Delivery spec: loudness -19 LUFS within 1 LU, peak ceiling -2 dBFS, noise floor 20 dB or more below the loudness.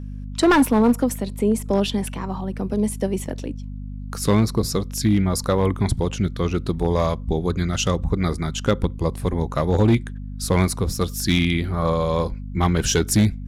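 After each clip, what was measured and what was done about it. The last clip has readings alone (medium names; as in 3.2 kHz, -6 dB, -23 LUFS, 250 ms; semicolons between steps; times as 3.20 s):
clipped samples 0.7%; clipping level -10.5 dBFS; hum 50 Hz; highest harmonic 250 Hz; hum level -30 dBFS; loudness -22.0 LUFS; peak level -10.5 dBFS; loudness target -19.0 LUFS
-> clip repair -10.5 dBFS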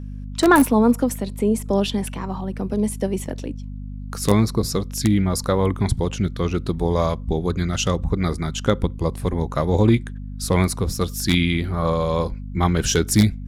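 clipped samples 0.0%; hum 50 Hz; highest harmonic 250 Hz; hum level -30 dBFS
-> de-hum 50 Hz, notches 5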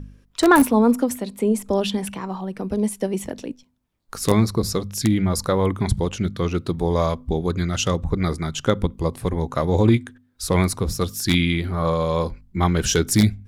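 hum not found; loudness -21.5 LUFS; peak level -1.0 dBFS; loudness target -19.0 LUFS
-> trim +2.5 dB; peak limiter -2 dBFS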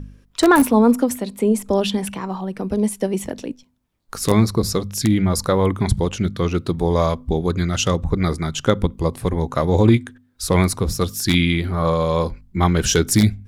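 loudness -19.5 LUFS; peak level -2.0 dBFS; noise floor -55 dBFS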